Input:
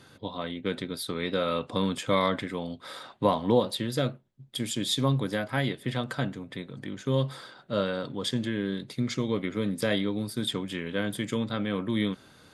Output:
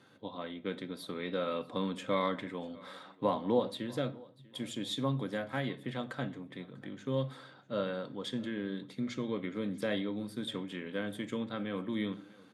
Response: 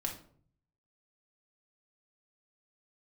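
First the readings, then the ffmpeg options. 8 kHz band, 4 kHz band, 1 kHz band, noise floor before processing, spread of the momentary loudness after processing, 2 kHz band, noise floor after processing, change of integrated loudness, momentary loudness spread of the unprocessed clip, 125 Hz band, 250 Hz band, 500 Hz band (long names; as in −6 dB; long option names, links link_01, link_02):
−13.5 dB, −9.5 dB, −6.5 dB, −55 dBFS, 11 LU, −7.5 dB, −58 dBFS, −7.0 dB, 10 LU, −9.5 dB, −6.5 dB, −6.0 dB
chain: -filter_complex "[0:a]highpass=150,aemphasis=mode=reproduction:type=cd,bandreject=frequency=4900:width=12,aecho=1:1:643|1286:0.0708|0.0262,asplit=2[link_01][link_02];[1:a]atrim=start_sample=2205[link_03];[link_02][link_03]afir=irnorm=-1:irlink=0,volume=-9dB[link_04];[link_01][link_04]amix=inputs=2:normalize=0,volume=-9dB"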